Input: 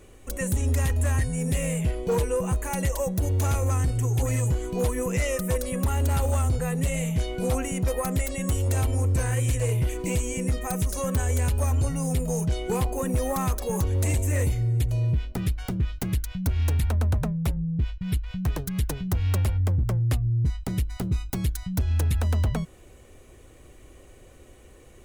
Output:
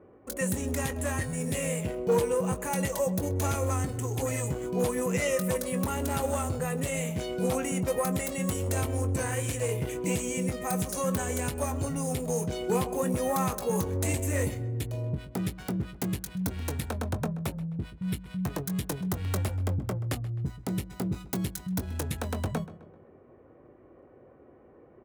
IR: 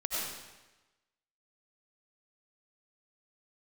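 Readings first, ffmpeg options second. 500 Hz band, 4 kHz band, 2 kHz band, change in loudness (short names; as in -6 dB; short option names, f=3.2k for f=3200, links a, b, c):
+0.5 dB, -1.5 dB, -1.0 dB, -4.5 dB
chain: -filter_complex "[0:a]highpass=160,acrossover=split=1500[a][b];[b]aeval=exprs='sgn(val(0))*max(abs(val(0))-0.00299,0)':c=same[c];[a][c]amix=inputs=2:normalize=0,asplit=2[d][e];[e]adelay=21,volume=-10.5dB[f];[d][f]amix=inputs=2:normalize=0,asplit=2[g][h];[h]adelay=130,lowpass=f=3.1k:p=1,volume=-16dB,asplit=2[i][j];[j]adelay=130,lowpass=f=3.1k:p=1,volume=0.47,asplit=2[k][l];[l]adelay=130,lowpass=f=3.1k:p=1,volume=0.47,asplit=2[m][n];[n]adelay=130,lowpass=f=3.1k:p=1,volume=0.47[o];[g][i][k][m][o]amix=inputs=5:normalize=0"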